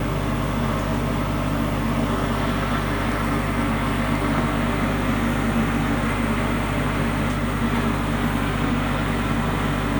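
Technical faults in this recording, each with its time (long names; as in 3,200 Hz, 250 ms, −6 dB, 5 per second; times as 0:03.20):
mains hum 50 Hz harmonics 3 −27 dBFS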